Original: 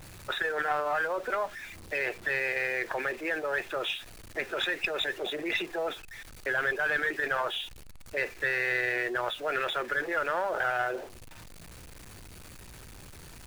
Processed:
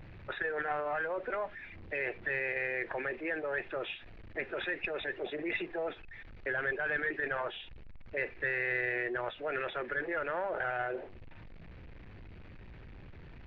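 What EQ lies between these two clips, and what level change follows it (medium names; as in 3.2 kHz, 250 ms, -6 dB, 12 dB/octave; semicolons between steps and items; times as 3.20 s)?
distance through air 180 m; tape spacing loss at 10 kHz 44 dB; resonant high shelf 1.6 kHz +6 dB, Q 1.5; 0.0 dB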